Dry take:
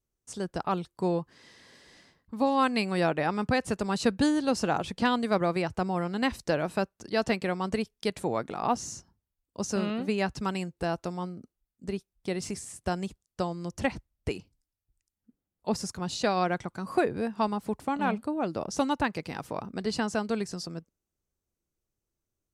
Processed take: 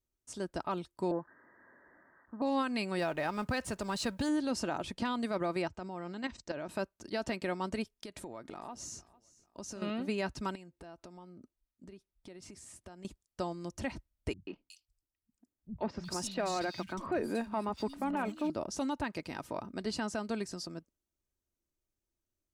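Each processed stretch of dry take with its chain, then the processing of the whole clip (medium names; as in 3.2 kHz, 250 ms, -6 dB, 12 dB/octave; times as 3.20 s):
1.11–2.42 s: zero-crossing glitches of -33.5 dBFS + steep low-pass 1.8 kHz 96 dB/octave + bass shelf 120 Hz -11 dB
2.99–4.29 s: companding laws mixed up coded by mu + peaking EQ 300 Hz -5 dB 0.99 oct
5.68–6.69 s: steep low-pass 8.1 kHz 72 dB/octave + level held to a coarse grid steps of 12 dB
7.92–9.82 s: compression 16:1, threshold -35 dBFS + feedback delay 449 ms, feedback 32%, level -21 dB
10.55–13.05 s: treble shelf 6 kHz -6 dB + compression, threshold -43 dBFS
14.33–18.50 s: waveshaping leveller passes 1 + three bands offset in time lows, mids, highs 140/370 ms, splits 170/3200 Hz
whole clip: comb 3.2 ms, depth 35%; peak limiter -19.5 dBFS; trim -4.5 dB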